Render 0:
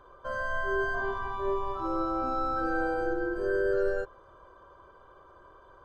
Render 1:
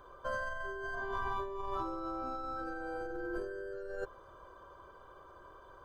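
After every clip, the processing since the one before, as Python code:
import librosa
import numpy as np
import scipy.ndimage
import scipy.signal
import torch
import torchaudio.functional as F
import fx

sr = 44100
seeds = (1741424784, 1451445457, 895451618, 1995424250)

y = fx.high_shelf(x, sr, hz=5500.0, db=7.5)
y = fx.over_compress(y, sr, threshold_db=-34.0, ratio=-1.0)
y = y * librosa.db_to_amplitude(-5.0)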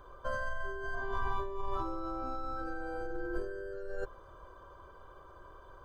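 y = fx.low_shelf(x, sr, hz=99.0, db=9.0)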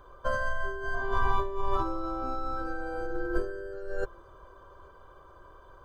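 y = x + 10.0 ** (-23.5 / 20.0) * np.pad(x, (int(829 * sr / 1000.0), 0))[:len(x)]
y = fx.upward_expand(y, sr, threshold_db=-45.0, expansion=1.5)
y = y * librosa.db_to_amplitude(8.5)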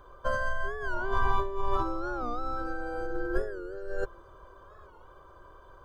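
y = fx.record_warp(x, sr, rpm=45.0, depth_cents=160.0)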